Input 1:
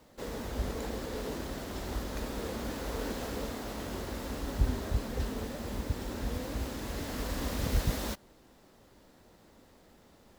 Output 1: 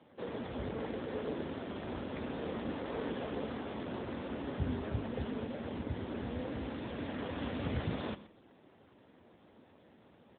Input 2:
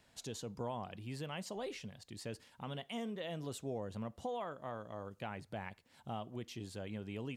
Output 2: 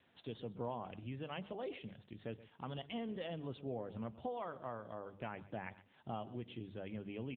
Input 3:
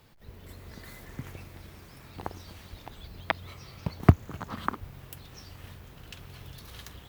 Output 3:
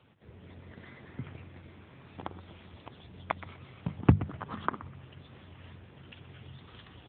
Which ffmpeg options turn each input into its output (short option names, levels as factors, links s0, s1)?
-filter_complex "[0:a]bandreject=f=50:t=h:w=6,bandreject=f=100:t=h:w=6,bandreject=f=150:t=h:w=6,bandreject=f=200:t=h:w=6,asplit=2[s0][s1];[s1]aecho=0:1:125|250:0.15|0.0239[s2];[s0][s2]amix=inputs=2:normalize=0" -ar 8000 -c:a libopencore_amrnb -b:a 7950